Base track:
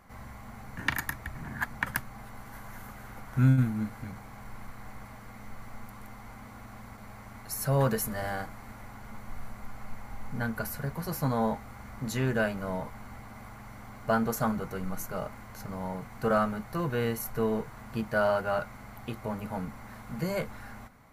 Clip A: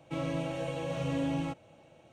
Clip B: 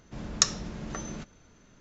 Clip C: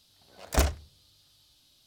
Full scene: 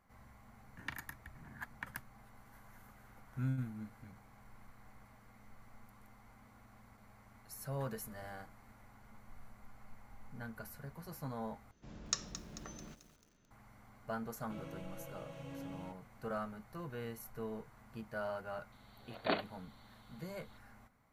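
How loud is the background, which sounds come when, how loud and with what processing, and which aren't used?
base track -14.5 dB
11.71 replace with B -13 dB + lo-fi delay 0.22 s, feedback 55%, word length 7-bit, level -12 dB
14.39 add A -15.5 dB
18.72 add C -5 dB + FFT band-pass 170–4600 Hz

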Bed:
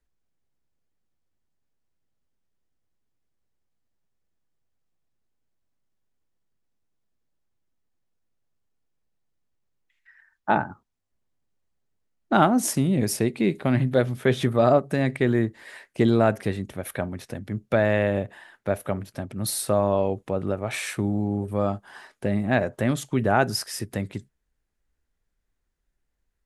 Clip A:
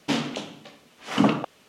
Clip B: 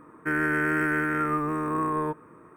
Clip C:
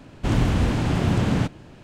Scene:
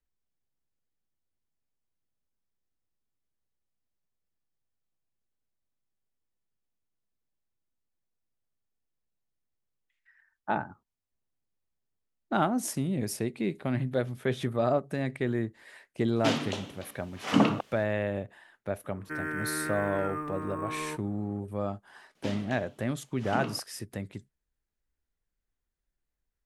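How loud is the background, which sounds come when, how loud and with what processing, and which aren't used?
bed -8 dB
16.16 add A -2.5 dB
18.84 add B -9 dB
22.15 add A -13.5 dB
not used: C

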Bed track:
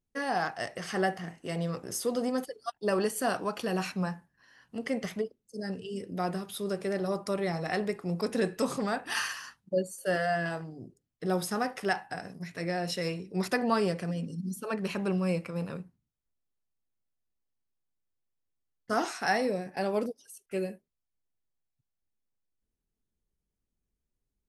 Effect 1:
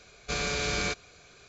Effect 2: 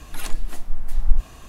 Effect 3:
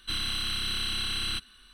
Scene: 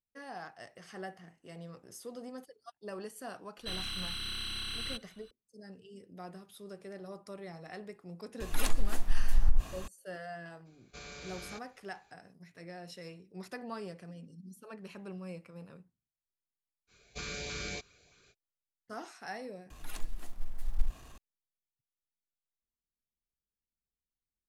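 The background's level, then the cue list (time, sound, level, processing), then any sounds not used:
bed track -14.5 dB
3.58 add 3 -7.5 dB
8.4 add 2 -1 dB + compressor, threshold -14 dBFS
10.65 add 1 -17 dB, fades 0.02 s
16.87 add 1 -9 dB, fades 0.05 s + LFO notch saw up 3.2 Hz 550–1500 Hz
19.7 replace with 2 -13 dB + G.711 law mismatch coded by mu

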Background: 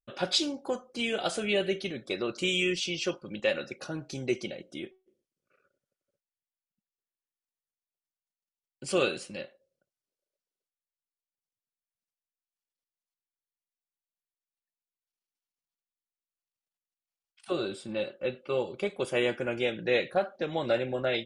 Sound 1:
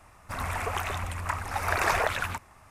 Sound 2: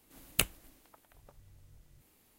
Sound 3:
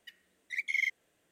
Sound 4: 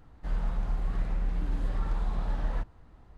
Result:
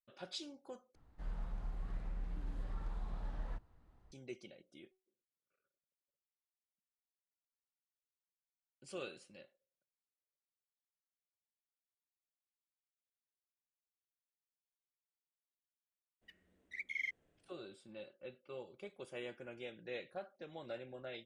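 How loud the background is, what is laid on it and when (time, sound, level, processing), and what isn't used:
background -18.5 dB
0.95 replace with 4 -12.5 dB
16.21 add 3 -6 dB, fades 0.02 s + tilt -3.5 dB/oct
not used: 1, 2

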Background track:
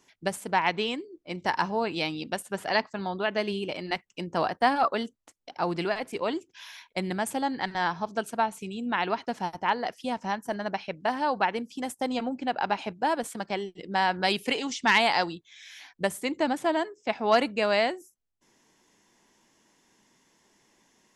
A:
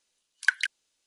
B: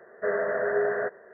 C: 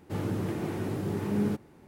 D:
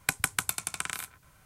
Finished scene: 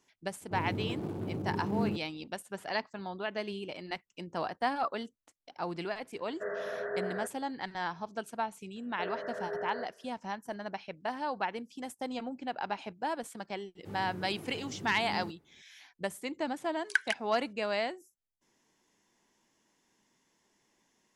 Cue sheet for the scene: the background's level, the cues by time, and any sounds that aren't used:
background track -8 dB
0.41 add C -4 dB + Wiener smoothing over 25 samples
6.18 add B -10 dB
8.76 add B -12.5 dB
13.75 add C -13.5 dB
16.47 add A -5 dB
not used: D

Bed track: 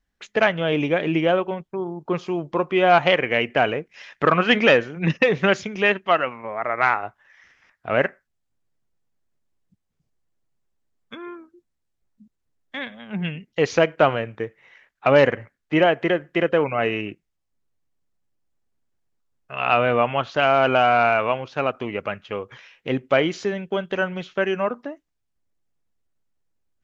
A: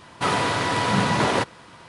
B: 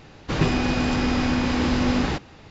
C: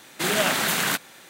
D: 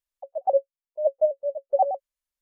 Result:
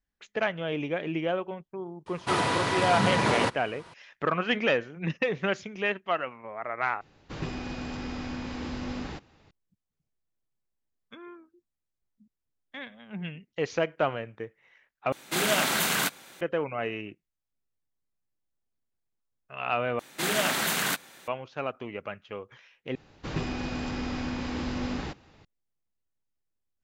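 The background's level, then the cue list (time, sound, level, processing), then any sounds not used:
bed track -9.5 dB
2.06 add A -4 dB
7.01 replace with B -13.5 dB
15.12 replace with C -2.5 dB + notch 1800 Hz, Q 20
19.99 replace with C -4 dB
22.95 replace with B -10.5 dB
not used: D

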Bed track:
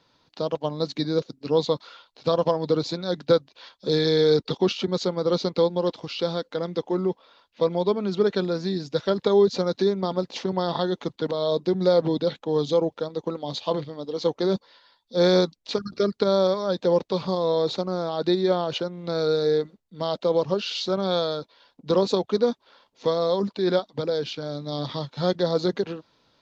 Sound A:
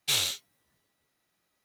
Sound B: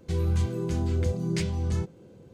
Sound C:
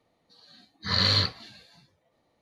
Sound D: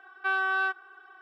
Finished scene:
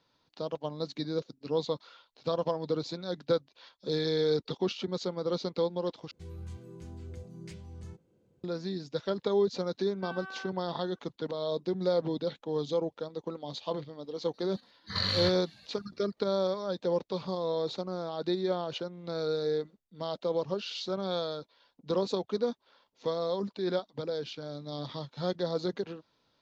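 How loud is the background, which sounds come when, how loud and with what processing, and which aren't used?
bed track -8.5 dB
6.11 replace with B -17.5 dB
9.78 add D -16.5 dB
14.04 add C -3 dB + level quantiser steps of 9 dB
not used: A

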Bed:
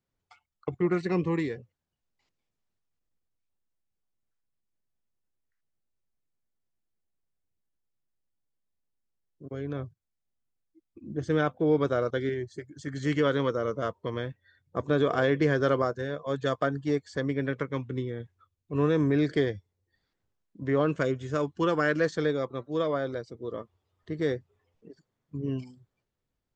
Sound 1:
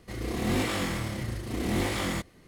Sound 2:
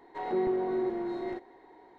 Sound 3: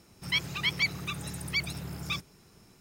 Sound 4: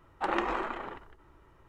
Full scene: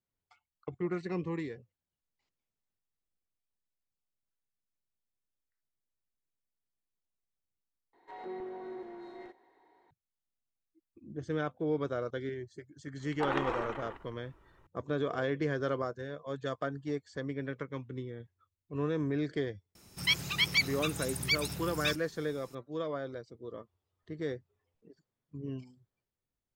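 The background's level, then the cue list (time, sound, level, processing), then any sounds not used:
bed -8 dB
7.93 replace with 2 -8 dB + low shelf 480 Hz -8 dB
12.99 add 4 -3.5 dB
19.75 add 3 -2 dB + high shelf 3900 Hz +7 dB
not used: 1

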